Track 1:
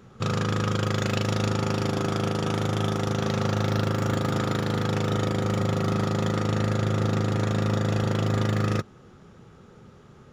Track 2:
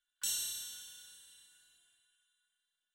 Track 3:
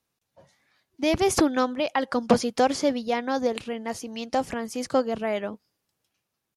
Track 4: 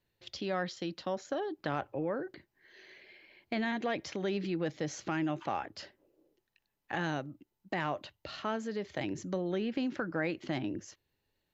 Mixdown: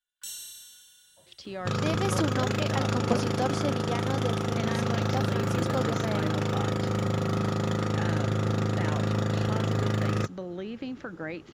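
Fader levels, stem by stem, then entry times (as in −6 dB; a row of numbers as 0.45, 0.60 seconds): −2.5, −3.5, −8.0, −3.0 decibels; 1.45, 0.00, 0.80, 1.05 seconds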